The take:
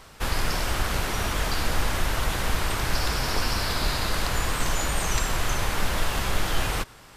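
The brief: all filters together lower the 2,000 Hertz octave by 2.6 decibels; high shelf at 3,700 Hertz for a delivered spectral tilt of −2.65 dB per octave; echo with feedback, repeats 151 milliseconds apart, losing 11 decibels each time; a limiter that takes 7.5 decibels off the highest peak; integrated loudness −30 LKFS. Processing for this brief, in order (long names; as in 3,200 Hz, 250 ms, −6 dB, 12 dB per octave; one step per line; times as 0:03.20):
parametric band 2,000 Hz −5.5 dB
high-shelf EQ 3,700 Hz +7.5 dB
brickwall limiter −15.5 dBFS
repeating echo 151 ms, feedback 28%, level −11 dB
level −4 dB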